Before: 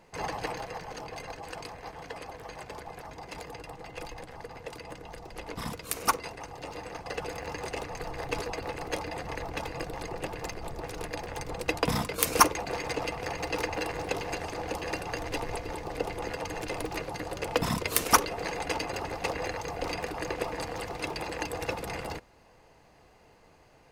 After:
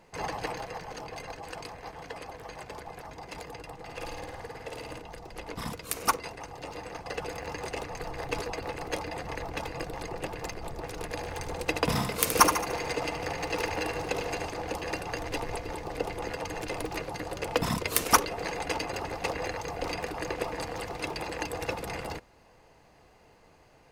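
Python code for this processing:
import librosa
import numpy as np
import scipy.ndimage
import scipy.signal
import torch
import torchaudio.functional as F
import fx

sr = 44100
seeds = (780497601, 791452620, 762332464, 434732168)

y = fx.room_flutter(x, sr, wall_m=9.1, rt60_s=0.93, at=(3.86, 5.0), fade=0.02)
y = fx.echo_feedback(y, sr, ms=74, feedback_pct=49, wet_db=-7.5, at=(11.09, 14.47), fade=0.02)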